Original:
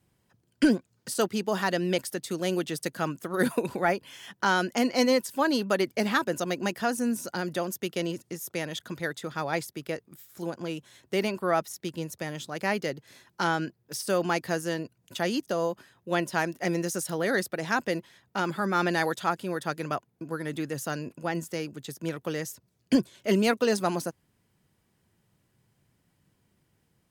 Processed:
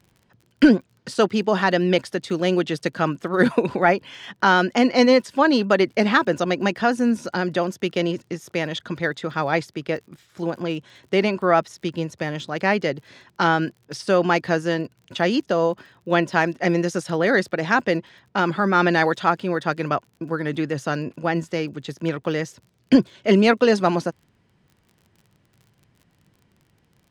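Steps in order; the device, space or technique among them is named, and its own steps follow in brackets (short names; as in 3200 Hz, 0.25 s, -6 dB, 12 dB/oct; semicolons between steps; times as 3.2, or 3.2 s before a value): lo-fi chain (LPF 4100 Hz 12 dB/oct; wow and flutter 18 cents; crackle 34/s -50 dBFS); gain +8 dB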